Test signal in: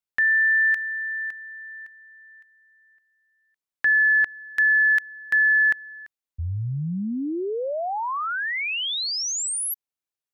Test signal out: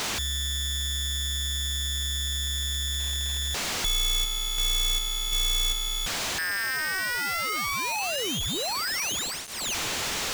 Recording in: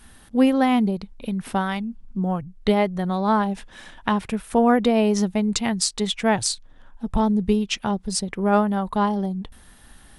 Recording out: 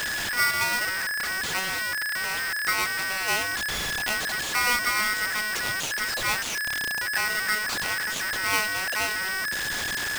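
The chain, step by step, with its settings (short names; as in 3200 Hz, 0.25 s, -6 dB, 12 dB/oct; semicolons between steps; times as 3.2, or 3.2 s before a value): delta modulation 32 kbps, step -15.5 dBFS; polarity switched at an audio rate 1700 Hz; gain -7 dB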